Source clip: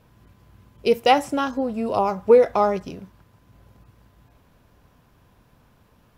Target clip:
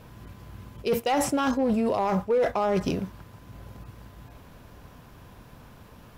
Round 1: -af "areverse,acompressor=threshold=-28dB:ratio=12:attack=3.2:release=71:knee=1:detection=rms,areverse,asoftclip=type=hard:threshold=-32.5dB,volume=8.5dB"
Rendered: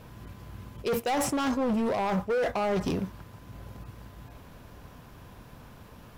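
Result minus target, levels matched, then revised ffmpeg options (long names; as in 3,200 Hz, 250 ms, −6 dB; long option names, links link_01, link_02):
hard clipping: distortion +12 dB
-af "areverse,acompressor=threshold=-28dB:ratio=12:attack=3.2:release=71:knee=1:detection=rms,areverse,asoftclip=type=hard:threshold=-26.5dB,volume=8.5dB"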